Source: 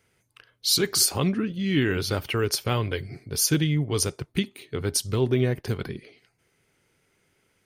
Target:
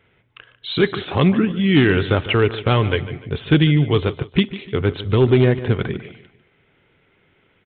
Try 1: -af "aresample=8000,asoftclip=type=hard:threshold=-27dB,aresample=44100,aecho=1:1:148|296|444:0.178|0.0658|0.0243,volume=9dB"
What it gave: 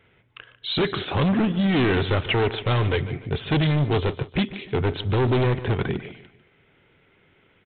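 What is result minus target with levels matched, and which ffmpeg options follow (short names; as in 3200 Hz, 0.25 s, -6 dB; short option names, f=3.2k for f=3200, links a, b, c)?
hard clip: distortion +16 dB
-af "aresample=8000,asoftclip=type=hard:threshold=-15.5dB,aresample=44100,aecho=1:1:148|296|444:0.178|0.0658|0.0243,volume=9dB"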